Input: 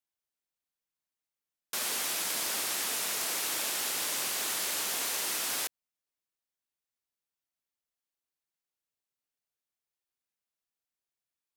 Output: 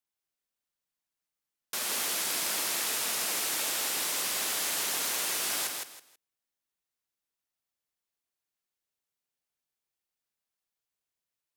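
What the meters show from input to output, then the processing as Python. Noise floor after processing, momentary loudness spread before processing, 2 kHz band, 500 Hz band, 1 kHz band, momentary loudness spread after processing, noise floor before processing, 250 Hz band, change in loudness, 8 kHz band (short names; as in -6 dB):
under -85 dBFS, 2 LU, +1.5 dB, +1.5 dB, +1.5 dB, 4 LU, under -85 dBFS, +1.5 dB, +1.5 dB, +1.5 dB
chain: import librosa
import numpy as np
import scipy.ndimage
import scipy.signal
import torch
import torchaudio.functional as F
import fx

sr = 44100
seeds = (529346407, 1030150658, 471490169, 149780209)

y = fx.echo_feedback(x, sr, ms=162, feedback_pct=24, wet_db=-4.0)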